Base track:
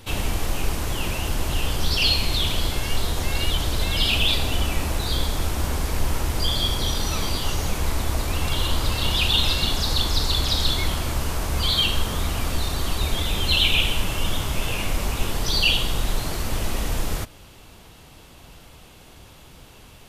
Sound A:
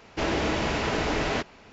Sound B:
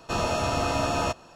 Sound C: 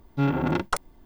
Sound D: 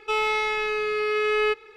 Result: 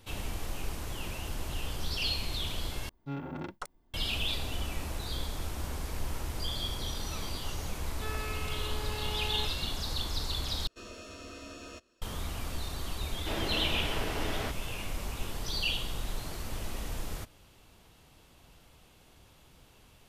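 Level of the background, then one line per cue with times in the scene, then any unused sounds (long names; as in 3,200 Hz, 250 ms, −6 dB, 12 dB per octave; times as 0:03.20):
base track −12 dB
0:02.89: overwrite with C −14.5 dB
0:07.93: mix in D −16.5 dB + highs frequency-modulated by the lows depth 0.44 ms
0:10.67: overwrite with B −15.5 dB + phaser with its sweep stopped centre 340 Hz, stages 4
0:13.09: mix in A −9 dB + variable-slope delta modulation 32 kbit/s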